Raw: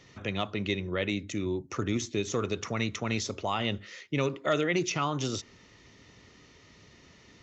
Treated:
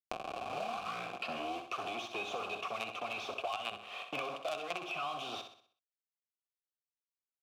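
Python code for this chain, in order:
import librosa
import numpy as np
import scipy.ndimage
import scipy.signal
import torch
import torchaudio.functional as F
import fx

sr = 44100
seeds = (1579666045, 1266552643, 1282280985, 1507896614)

p1 = fx.tape_start_head(x, sr, length_s=1.72)
p2 = fx.peak_eq(p1, sr, hz=3300.0, db=13.0, octaves=0.93)
p3 = fx.quant_companded(p2, sr, bits=2)
p4 = fx.vibrato(p3, sr, rate_hz=1.4, depth_cents=29.0)
p5 = fx.vowel_filter(p4, sr, vowel='a')
p6 = p5 + fx.room_flutter(p5, sr, wall_m=10.8, rt60_s=0.4, dry=0)
y = fx.band_squash(p6, sr, depth_pct=100)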